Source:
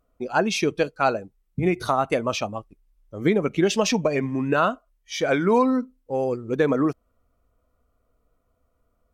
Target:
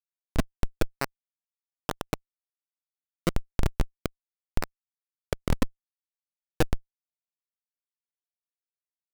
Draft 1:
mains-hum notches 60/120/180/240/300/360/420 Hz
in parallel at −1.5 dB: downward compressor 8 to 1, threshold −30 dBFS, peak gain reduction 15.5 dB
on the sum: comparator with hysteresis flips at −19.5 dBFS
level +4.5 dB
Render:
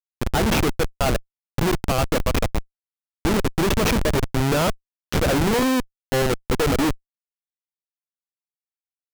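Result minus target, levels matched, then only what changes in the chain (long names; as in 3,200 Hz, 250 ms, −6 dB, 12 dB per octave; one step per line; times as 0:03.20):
comparator with hysteresis: distortion −25 dB
change: comparator with hysteresis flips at −10 dBFS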